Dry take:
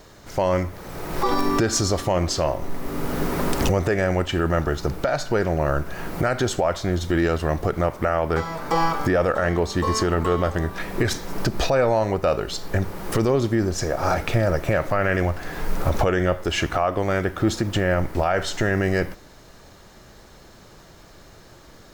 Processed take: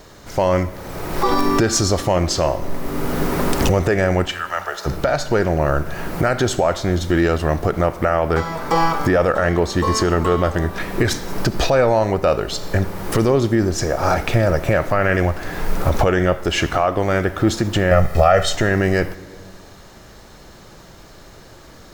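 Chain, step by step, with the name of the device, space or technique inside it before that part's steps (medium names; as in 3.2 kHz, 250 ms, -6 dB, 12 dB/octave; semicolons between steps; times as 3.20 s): 4.31–4.85 s: high-pass 1.2 kHz -> 450 Hz 24 dB/octave; 17.91–18.55 s: comb 1.6 ms, depth 96%; compressed reverb return (on a send at -8 dB: reverberation RT60 1.1 s, pre-delay 56 ms + compression, threshold -29 dBFS, peak gain reduction 16 dB); on the sum: trim +4 dB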